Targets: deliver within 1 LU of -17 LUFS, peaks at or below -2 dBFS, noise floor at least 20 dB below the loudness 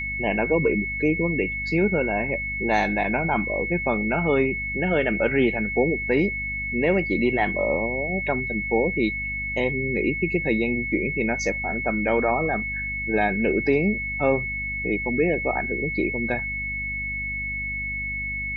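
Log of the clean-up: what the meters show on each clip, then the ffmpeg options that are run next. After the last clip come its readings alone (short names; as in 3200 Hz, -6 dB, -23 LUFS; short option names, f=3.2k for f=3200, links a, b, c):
hum 50 Hz; harmonics up to 250 Hz; hum level -34 dBFS; steady tone 2200 Hz; tone level -27 dBFS; loudness -23.5 LUFS; peak -8.0 dBFS; loudness target -17.0 LUFS
-> -af "bandreject=f=50:t=h:w=4,bandreject=f=100:t=h:w=4,bandreject=f=150:t=h:w=4,bandreject=f=200:t=h:w=4,bandreject=f=250:t=h:w=4"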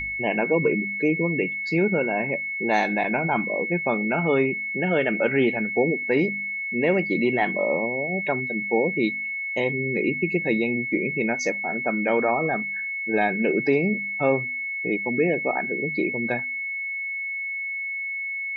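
hum none; steady tone 2200 Hz; tone level -27 dBFS
-> -af "bandreject=f=2.2k:w=30"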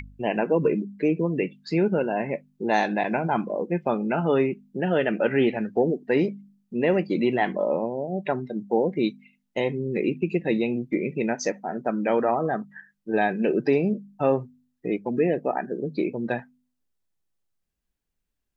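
steady tone none; loudness -25.5 LUFS; peak -9.0 dBFS; loudness target -17.0 LUFS
-> -af "volume=8.5dB,alimiter=limit=-2dB:level=0:latency=1"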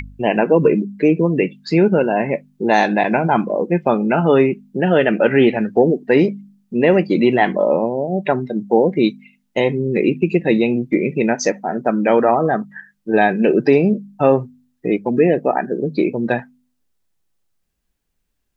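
loudness -17.0 LUFS; peak -2.0 dBFS; noise floor -70 dBFS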